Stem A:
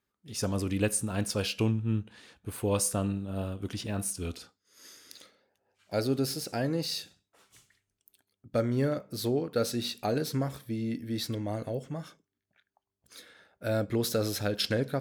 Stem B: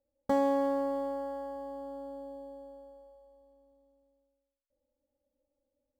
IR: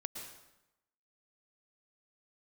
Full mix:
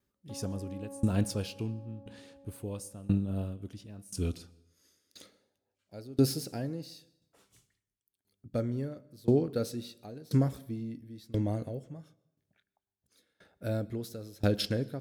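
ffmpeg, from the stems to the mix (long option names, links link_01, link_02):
-filter_complex "[0:a]highshelf=frequency=2100:gain=11.5,aeval=exprs='val(0)*pow(10,-25*if(lt(mod(0.97*n/s,1),2*abs(0.97)/1000),1-mod(0.97*n/s,1)/(2*abs(0.97)/1000),(mod(0.97*n/s,1)-2*abs(0.97)/1000)/(1-2*abs(0.97)/1000))/20)':channel_layout=same,volume=-1dB,asplit=2[link_01][link_02];[link_02]volume=-16.5dB[link_03];[1:a]highpass=160,alimiter=level_in=2.5dB:limit=-24dB:level=0:latency=1,volume=-2.5dB,volume=-15dB[link_04];[2:a]atrim=start_sample=2205[link_05];[link_03][link_05]afir=irnorm=-1:irlink=0[link_06];[link_01][link_04][link_06]amix=inputs=3:normalize=0,tiltshelf=frequency=720:gain=8.5"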